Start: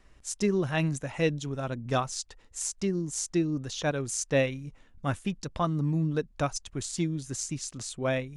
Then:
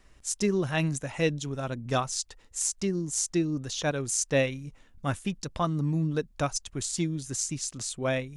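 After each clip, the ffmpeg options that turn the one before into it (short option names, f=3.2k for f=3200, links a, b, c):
-af "highshelf=f=4.4k:g=5.5"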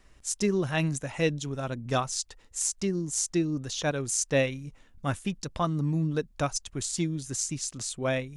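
-af anull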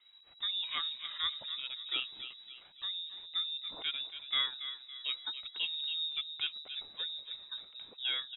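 -filter_complex "[0:a]flanger=delay=1.1:depth=1.8:regen=42:speed=0.39:shape=triangular,asplit=2[a][b];[b]adelay=280,lowpass=f=2.1k:p=1,volume=-9.5dB,asplit=2[c][d];[d]adelay=280,lowpass=f=2.1k:p=1,volume=0.49,asplit=2[e][f];[f]adelay=280,lowpass=f=2.1k:p=1,volume=0.49,asplit=2[g][h];[h]adelay=280,lowpass=f=2.1k:p=1,volume=0.49,asplit=2[i][j];[j]adelay=280,lowpass=f=2.1k:p=1,volume=0.49[k];[c][e][g][i][k]amix=inputs=5:normalize=0[l];[a][l]amix=inputs=2:normalize=0,lowpass=f=3.3k:t=q:w=0.5098,lowpass=f=3.3k:t=q:w=0.6013,lowpass=f=3.3k:t=q:w=0.9,lowpass=f=3.3k:t=q:w=2.563,afreqshift=-3900,volume=-4dB"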